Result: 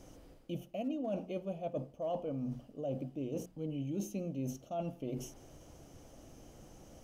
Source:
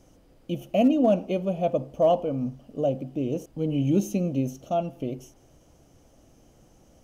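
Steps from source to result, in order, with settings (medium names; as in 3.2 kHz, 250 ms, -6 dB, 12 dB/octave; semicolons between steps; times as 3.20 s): hum notches 60/120/180/240 Hz; reverse; compression 5:1, threshold -39 dBFS, peak gain reduction 20.5 dB; reverse; trim +2 dB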